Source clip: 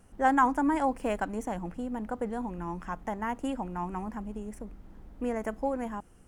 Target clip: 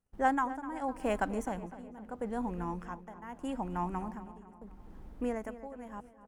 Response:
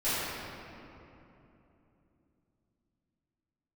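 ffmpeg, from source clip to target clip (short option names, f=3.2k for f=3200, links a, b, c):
-filter_complex "[0:a]tremolo=f=0.79:d=0.84,agate=range=-27dB:threshold=-52dB:ratio=16:detection=peak,asplit=2[a][b];[b]adelay=253,lowpass=f=3.2k:p=1,volume=-14dB,asplit=2[c][d];[d]adelay=253,lowpass=f=3.2k:p=1,volume=0.52,asplit=2[e][f];[f]adelay=253,lowpass=f=3.2k:p=1,volume=0.52,asplit=2[g][h];[h]adelay=253,lowpass=f=3.2k:p=1,volume=0.52,asplit=2[i][j];[j]adelay=253,lowpass=f=3.2k:p=1,volume=0.52[k];[a][c][e][g][i][k]amix=inputs=6:normalize=0"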